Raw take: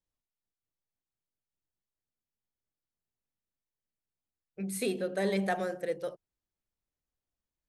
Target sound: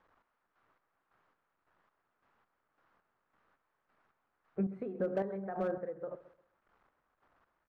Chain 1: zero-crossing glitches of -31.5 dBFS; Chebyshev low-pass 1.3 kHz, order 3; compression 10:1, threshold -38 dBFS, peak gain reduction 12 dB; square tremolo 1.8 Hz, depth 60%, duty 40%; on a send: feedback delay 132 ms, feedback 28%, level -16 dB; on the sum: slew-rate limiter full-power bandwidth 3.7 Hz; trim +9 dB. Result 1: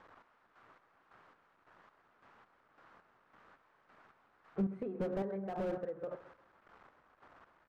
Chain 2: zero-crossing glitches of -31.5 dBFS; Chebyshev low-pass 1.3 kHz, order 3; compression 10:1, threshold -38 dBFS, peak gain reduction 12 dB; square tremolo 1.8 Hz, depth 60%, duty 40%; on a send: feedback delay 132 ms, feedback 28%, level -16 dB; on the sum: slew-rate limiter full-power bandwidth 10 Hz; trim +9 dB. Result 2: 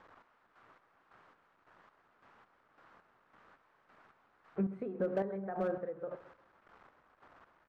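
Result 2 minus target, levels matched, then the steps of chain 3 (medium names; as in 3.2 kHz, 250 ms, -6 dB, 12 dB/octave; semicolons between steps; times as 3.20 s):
zero-crossing glitches: distortion +11 dB
zero-crossing glitches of -43 dBFS; Chebyshev low-pass 1.3 kHz, order 3; compression 10:1, threshold -38 dBFS, peak gain reduction 12 dB; square tremolo 1.8 Hz, depth 60%, duty 40%; on a send: feedback delay 132 ms, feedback 28%, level -16 dB; on the sum: slew-rate limiter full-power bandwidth 10 Hz; trim +9 dB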